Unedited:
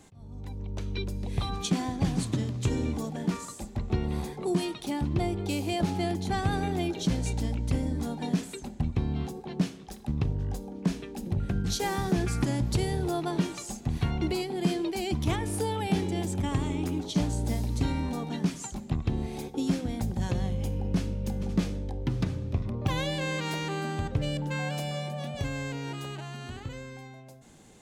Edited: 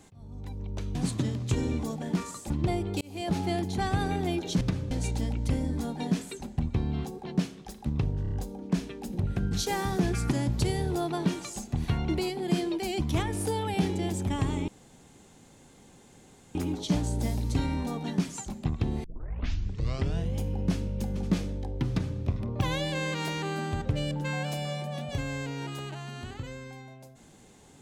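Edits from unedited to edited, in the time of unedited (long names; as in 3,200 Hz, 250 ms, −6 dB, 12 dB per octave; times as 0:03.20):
0:00.95–0:02.09: remove
0:03.64–0:05.02: remove
0:05.53–0:05.88: fade in
0:10.44: stutter 0.03 s, 4 plays
0:16.81: splice in room tone 1.87 s
0:19.30: tape start 1.30 s
0:22.15–0:22.45: duplicate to 0:07.13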